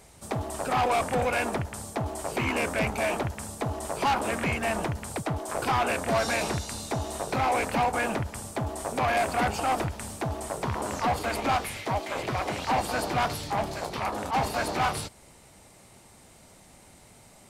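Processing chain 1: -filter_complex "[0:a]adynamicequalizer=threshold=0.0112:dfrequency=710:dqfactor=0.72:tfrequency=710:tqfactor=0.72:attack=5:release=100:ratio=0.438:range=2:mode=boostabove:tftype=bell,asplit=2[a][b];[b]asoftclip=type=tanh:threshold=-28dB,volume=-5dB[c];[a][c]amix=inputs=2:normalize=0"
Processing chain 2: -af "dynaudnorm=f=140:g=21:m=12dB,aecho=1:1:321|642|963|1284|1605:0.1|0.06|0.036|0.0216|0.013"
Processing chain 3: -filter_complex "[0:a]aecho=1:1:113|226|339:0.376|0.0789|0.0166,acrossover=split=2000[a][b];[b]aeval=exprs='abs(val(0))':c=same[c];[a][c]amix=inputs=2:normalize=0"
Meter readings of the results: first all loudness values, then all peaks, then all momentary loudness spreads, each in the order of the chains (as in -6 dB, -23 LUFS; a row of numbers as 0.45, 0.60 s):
-24.0, -17.0, -29.0 LUFS; -14.5, -7.0, -15.5 dBFS; 8, 9, 7 LU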